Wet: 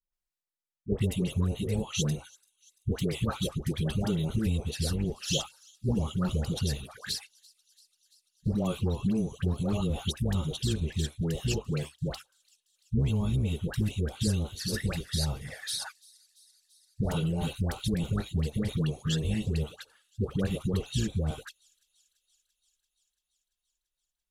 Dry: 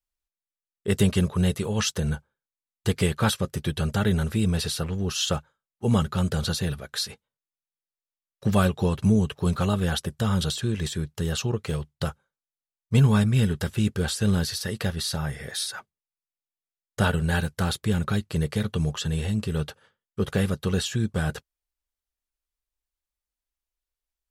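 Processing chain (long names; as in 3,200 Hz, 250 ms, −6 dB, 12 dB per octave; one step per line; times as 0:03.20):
sub-octave generator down 1 octave, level −6 dB
downward compressor 4 to 1, threshold −25 dBFS, peak gain reduction 11 dB
flanger swept by the level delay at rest 5.6 ms, full sweep at −25 dBFS
all-pass dispersion highs, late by 129 ms, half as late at 750 Hz
on a send: delay with a high-pass on its return 339 ms, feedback 72%, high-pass 5,200 Hz, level −20.5 dB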